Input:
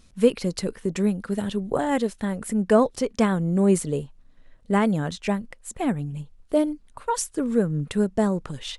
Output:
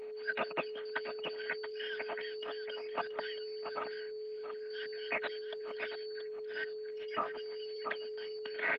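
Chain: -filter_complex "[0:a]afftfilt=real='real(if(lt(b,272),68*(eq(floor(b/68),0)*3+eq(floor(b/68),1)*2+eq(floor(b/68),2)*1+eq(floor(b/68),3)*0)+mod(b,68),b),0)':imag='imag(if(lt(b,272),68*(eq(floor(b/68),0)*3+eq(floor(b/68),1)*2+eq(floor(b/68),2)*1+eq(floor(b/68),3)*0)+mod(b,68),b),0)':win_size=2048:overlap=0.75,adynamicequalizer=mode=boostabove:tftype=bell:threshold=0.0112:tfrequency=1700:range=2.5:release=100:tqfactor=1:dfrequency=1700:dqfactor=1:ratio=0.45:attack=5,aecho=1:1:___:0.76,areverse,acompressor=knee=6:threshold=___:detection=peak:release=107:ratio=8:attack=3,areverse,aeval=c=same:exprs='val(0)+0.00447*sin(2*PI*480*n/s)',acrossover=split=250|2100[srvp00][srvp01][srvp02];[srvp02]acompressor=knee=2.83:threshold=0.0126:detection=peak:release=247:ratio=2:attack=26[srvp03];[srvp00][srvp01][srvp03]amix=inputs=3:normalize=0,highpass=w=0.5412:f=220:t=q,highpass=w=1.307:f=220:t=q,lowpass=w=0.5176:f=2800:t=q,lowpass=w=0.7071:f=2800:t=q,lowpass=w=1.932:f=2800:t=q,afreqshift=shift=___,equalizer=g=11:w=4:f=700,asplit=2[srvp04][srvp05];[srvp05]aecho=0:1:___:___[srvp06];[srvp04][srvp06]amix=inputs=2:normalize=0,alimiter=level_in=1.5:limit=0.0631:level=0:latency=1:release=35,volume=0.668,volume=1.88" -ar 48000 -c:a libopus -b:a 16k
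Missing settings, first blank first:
3.1, 0.0631, -52, 678, 0.316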